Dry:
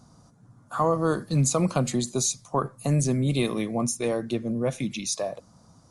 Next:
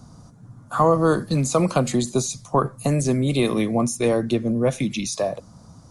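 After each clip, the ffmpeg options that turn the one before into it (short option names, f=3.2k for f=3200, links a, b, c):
-filter_complex "[0:a]lowshelf=f=200:g=6.5,acrossover=split=280|1700[a][b][c];[a]acompressor=threshold=-29dB:ratio=6[d];[c]alimiter=level_in=0.5dB:limit=-24dB:level=0:latency=1:release=20,volume=-0.5dB[e];[d][b][e]amix=inputs=3:normalize=0,volume=5.5dB"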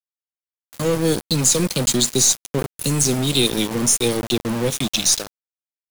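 -af "firequalizer=gain_entry='entry(490,0);entry(730,-23);entry(3100,13)':delay=0.05:min_phase=1,aeval=exprs='val(0)*gte(abs(val(0)),0.075)':c=same,aeval=exprs='0.668*(cos(1*acos(clip(val(0)/0.668,-1,1)))-cos(1*PI/2))+0.0335*(cos(6*acos(clip(val(0)/0.668,-1,1)))-cos(6*PI/2))':c=same"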